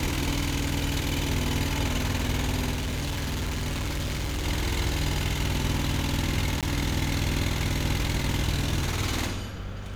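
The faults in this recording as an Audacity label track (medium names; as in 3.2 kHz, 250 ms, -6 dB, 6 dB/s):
2.730000	4.460000	clipped -26 dBFS
6.610000	6.630000	dropout 17 ms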